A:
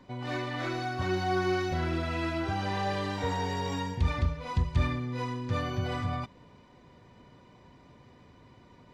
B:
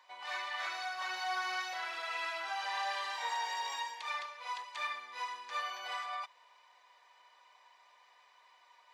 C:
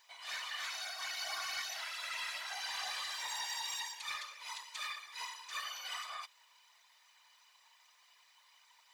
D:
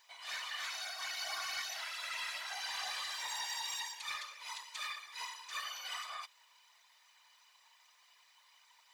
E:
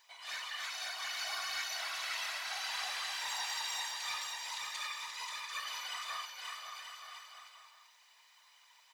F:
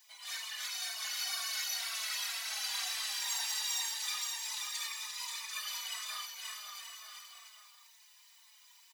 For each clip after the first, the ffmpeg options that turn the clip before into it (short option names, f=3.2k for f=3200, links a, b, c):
-af "highpass=f=840:w=0.5412,highpass=f=840:w=1.3066,bandreject=f=1.4k:w=11"
-af "aderivative,afftfilt=real='hypot(re,im)*cos(2*PI*random(0))':imag='hypot(re,im)*sin(2*PI*random(1))':win_size=512:overlap=0.75,aeval=exprs='0.01*(cos(1*acos(clip(val(0)/0.01,-1,1)))-cos(1*PI/2))+0.000631*(cos(5*acos(clip(val(0)/0.01,-1,1)))-cos(5*PI/2))':c=same,volume=12.5dB"
-af anull
-af "aecho=1:1:530|927.5|1226|1449|1617:0.631|0.398|0.251|0.158|0.1"
-filter_complex "[0:a]crystalizer=i=4.5:c=0,asplit=2[a][b];[b]adelay=4.1,afreqshift=-2[c];[a][c]amix=inputs=2:normalize=1,volume=-4dB"